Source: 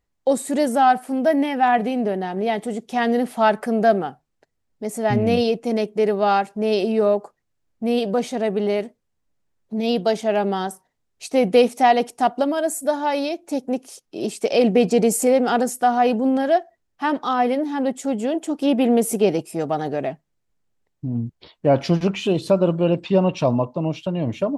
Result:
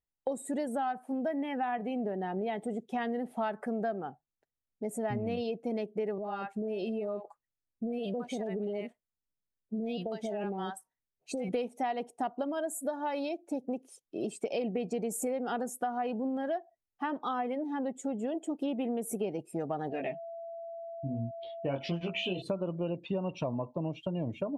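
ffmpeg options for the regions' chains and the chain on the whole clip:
-filter_complex "[0:a]asettb=1/sr,asplit=3[s0][s1][s2];[s0]atrim=end=6.184[s3];[s1]atrim=start=6.18:end=11.49,asetpts=PTS-STARTPTS,afade=t=in:d=0.004:c=qsin,afade=t=out:st=5.306:d=0.004:c=qsin,acompressor=threshold=0.0794:ratio=10:attack=3.2:release=140:knee=1:detection=peak,acrossover=split=800[s4][s5];[s5]adelay=60[s6];[s4][s6]amix=inputs=2:normalize=0,atrim=end_sample=234171[s7];[s2]atrim=start=11.486[s8];[s3][s7]acrossfade=d=0.004:c1=hsin:c2=qsin[s9];[s9][s8]acrossfade=d=0.004:c1=qsin:c2=hsin,asettb=1/sr,asplit=3[s10][s11][s12];[s10]atrim=end=19.904[s13];[s11]atrim=start=19.9:end=22.42,asetpts=PTS-STARTPTS,afade=t=in:d=0.004:c=qsin,afade=t=out:st=2.516:d=0.004:c=qsin,equalizer=f=2900:t=o:w=1.3:g=11,flanger=delay=17:depth=5.4:speed=1.4,aeval=exprs='val(0)+0.02*sin(2*PI*670*n/s)':c=same[s14];[s12]atrim=start=22.416[s15];[s13][s14]acrossfade=d=0.004:c1=hsin:c2=qsin[s16];[s16][s15]acrossfade=d=0.004:c1=qsin:c2=hsin,afftdn=nr=13:nf=-37,equalizer=f=4900:w=2:g=-5.5,acompressor=threshold=0.0562:ratio=6,volume=0.531"

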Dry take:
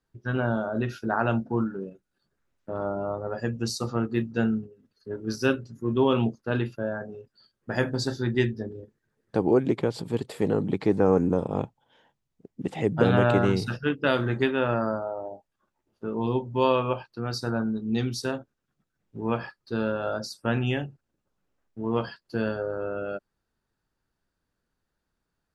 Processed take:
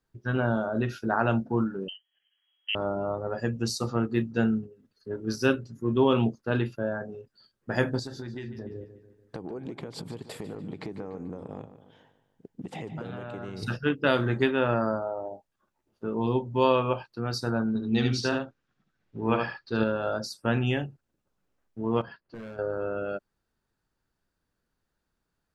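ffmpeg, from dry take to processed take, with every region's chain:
-filter_complex "[0:a]asettb=1/sr,asplit=3[s0][s1][s2];[s0]atrim=end=1.884[s3];[s1]atrim=start=1.88:end=2.75,asetpts=PTS-STARTPTS,afade=t=in:d=0.004:c=qsin,afade=t=out:st=0.866:d=0.004:c=qsin,equalizer=f=280:w=1.1:g=8,lowpass=f=2800:t=q:w=0.5098,lowpass=f=2800:t=q:w=0.6013,lowpass=f=2800:t=q:w=0.9,lowpass=f=2800:t=q:w=2.563,afreqshift=-3300[s4];[s2]atrim=start=2.746[s5];[s3][s4]acrossfade=d=0.004:c1=hsin:c2=qsin[s6];[s6][s5]acrossfade=d=0.004:c1=qsin:c2=hsin,asettb=1/sr,asplit=3[s7][s8][s9];[s7]atrim=end=7.994[s10];[s8]atrim=start=7.99:end=13.63,asetpts=PTS-STARTPTS,afade=t=in:d=0.004:c=qsin,afade=t=out:st=5.636:d=0.004:c=qsin,acompressor=threshold=0.0224:ratio=10:attack=3.2:release=140:knee=1:detection=peak,asplit=2[s11][s12];[s12]adelay=146,lowpass=f=4700:p=1,volume=0.237,asplit=2[s13][s14];[s14]adelay=146,lowpass=f=4700:p=1,volume=0.51,asplit=2[s15][s16];[s16]adelay=146,lowpass=f=4700:p=1,volume=0.51,asplit=2[s17][s18];[s18]adelay=146,lowpass=f=4700:p=1,volume=0.51,asplit=2[s19][s20];[s20]adelay=146,lowpass=f=4700:p=1,volume=0.51[s21];[s11][s13][s15][s17][s19][s21]amix=inputs=6:normalize=0,atrim=end_sample=248724[s22];[s9]atrim=start=13.626[s23];[s10][s22]acrossfade=d=0.004:c1=hsin:c2=qsin[s24];[s24][s23]acrossfade=d=0.004:c1=qsin:c2=hsin,asettb=1/sr,asplit=3[s25][s26][s27];[s25]atrim=end=17.684[s28];[s26]atrim=start=17.68:end=19.84,asetpts=PTS-STARTPTS,afade=t=in:d=0.004:c=qsin,afade=t=out:st=2.156:d=0.004:c=qsin,lowpass=5500,equalizer=f=2800:w=0.43:g=4.5,aecho=1:1:72:0.631,atrim=end_sample=95256[s29];[s27]atrim=start=19.836[s30];[s28][s29]acrossfade=d=0.004:c1=hsin:c2=qsin[s31];[s31][s30]acrossfade=d=0.004:c1=qsin:c2=hsin,asettb=1/sr,asplit=3[s32][s33][s34];[s32]atrim=end=22.014[s35];[s33]atrim=start=22.01:end=22.59,asetpts=PTS-STARTPTS,afade=t=in:d=0.004:c=qsin,afade=t=out:st=0.576:d=0.004:c=qsin,lowpass=2300,volume=21.1,asoftclip=hard,volume=0.0473,acompressor=threshold=0.01:ratio=4:attack=3.2:release=140:knee=1:detection=peak[s36];[s34]atrim=start=22.586[s37];[s35][s36]acrossfade=d=0.004:c1=hsin:c2=qsin[s38];[s38][s37]acrossfade=d=0.004:c1=qsin:c2=hsin"

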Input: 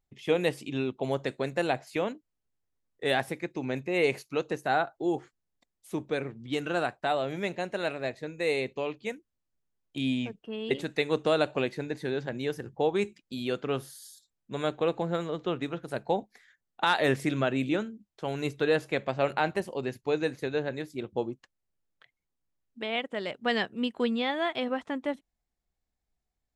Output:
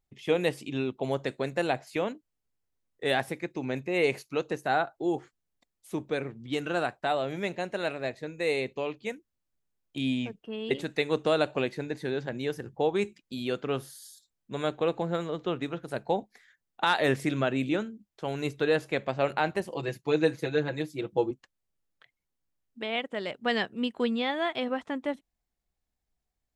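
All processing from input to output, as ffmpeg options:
-filter_complex "[0:a]asettb=1/sr,asplit=3[s0][s1][s2];[s0]atrim=end=19.714[s3];[s1]atrim=start=19.71:end=21.31,asetpts=PTS-STARTPTS,afade=t=in:d=0.004:c=qsin,afade=t=out:st=1.596:d=0.004:c=qsin,highpass=60,aecho=1:1:6.1:0.93,atrim=end_sample=70560[s4];[s2]atrim=start=21.306[s5];[s3][s4]acrossfade=d=0.004:c1=hsin:c2=qsin[s6];[s6][s5]acrossfade=d=0.004:c1=qsin:c2=hsin"

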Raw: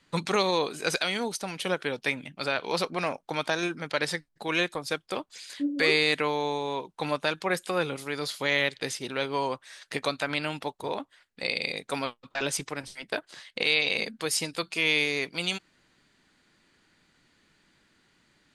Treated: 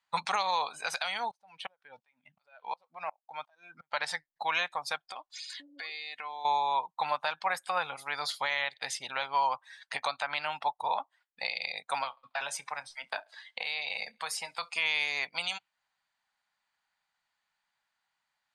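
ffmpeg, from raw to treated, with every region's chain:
-filter_complex "[0:a]asettb=1/sr,asplit=3[s0][s1][s2];[s0]atrim=end=1.314[s3];[s1]atrim=start=1.31:end=3.92,asetpts=PTS-STARTPTS,afade=t=in:d=0.004:c=qsin,afade=t=out:st=2.606:d=0.004:c=qsin,highshelf=f=7200:g=-7.5,acompressor=threshold=0.0282:ratio=2.5:attack=3.2:release=140:knee=1:detection=peak,aeval=exprs='val(0)*pow(10,-31*if(lt(mod(-2.8*n/s,1),2*abs(-2.8)/1000),1-mod(-2.8*n/s,1)/(2*abs(-2.8)/1000),(mod(-2.8*n/s,1)-2*abs(-2.8)/1000)/(1-2*abs(-2.8)/1000))/20)':c=same[s4];[s2]atrim=start=3.916[s5];[s3][s4]acrossfade=d=0.004:c1=hsin:c2=qsin[s6];[s6][s5]acrossfade=d=0.004:c1=qsin:c2=hsin,asettb=1/sr,asplit=3[s7][s8][s9];[s7]atrim=end=4.994[s10];[s8]atrim=start=4.99:end=6.45,asetpts=PTS-STARTPTS,afade=t=in:d=0.004:c=qsin,afade=t=out:st=1.456:d=0.004:c=qsin,equalizer=f=4300:w=0.86:g=3.5,acompressor=threshold=0.0158:ratio=8:attack=3.2:release=140:knee=1:detection=peak,aecho=1:1:2.8:0.32,atrim=end_sample=64386[s11];[s9]atrim=start=6.446[s12];[s10][s11]acrossfade=d=0.004:c1=hsin:c2=qsin[s13];[s13][s12]acrossfade=d=0.004:c1=qsin:c2=hsin,asettb=1/sr,asplit=3[s14][s15][s16];[s14]atrim=end=12.034[s17];[s15]atrim=start=12.03:end=14.75,asetpts=PTS-STARTPTS,afade=t=in:d=0.004:c=qsin,afade=t=out:st=2.716:d=0.004:c=qsin,acrossover=split=190|460|2300|5600[s18][s19][s20][s21][s22];[s18]acompressor=threshold=0.00282:ratio=3[s23];[s19]acompressor=threshold=0.00316:ratio=3[s24];[s20]acompressor=threshold=0.0141:ratio=3[s25];[s21]acompressor=threshold=0.00631:ratio=3[s26];[s22]acompressor=threshold=0.01:ratio=3[s27];[s23][s24][s25][s26][s27]amix=inputs=5:normalize=0,asplit=2[s28][s29];[s29]adelay=30,volume=0.2[s30];[s28][s30]amix=inputs=2:normalize=0,atrim=end_sample=119952,aecho=1:1:69|138|207|276|345:0.1|0.058|0.0336|0.0195|0.0113,atrim=end_sample=119952[s31];[s16]atrim=start=14.746[s32];[s17][s31]acrossfade=d=0.004:c1=hsin:c2=qsin[s33];[s33][s32]acrossfade=d=0.004:c1=qsin:c2=hsin,afftdn=nr=17:nf=-45,lowshelf=f=540:t=q:w=3:g=-14,alimiter=limit=0.126:level=0:latency=1:release=347"

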